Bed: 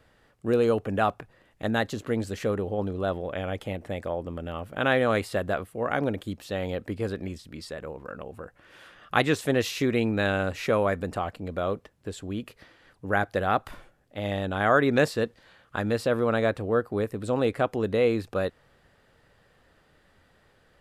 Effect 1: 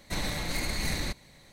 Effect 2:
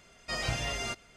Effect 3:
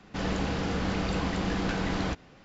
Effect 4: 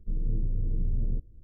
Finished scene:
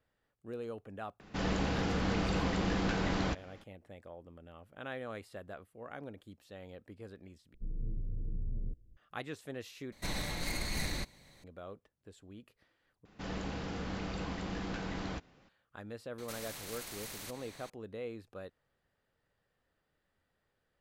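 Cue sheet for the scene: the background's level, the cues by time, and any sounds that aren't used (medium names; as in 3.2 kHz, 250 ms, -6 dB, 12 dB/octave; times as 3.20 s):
bed -19 dB
1.20 s: add 3 -3 dB
7.54 s: replace with 4 -9.5 dB
9.92 s: replace with 1 -5 dB
13.05 s: replace with 3 -9.5 dB
16.18 s: add 1 -13.5 dB + spectrum-flattening compressor 4:1
not used: 2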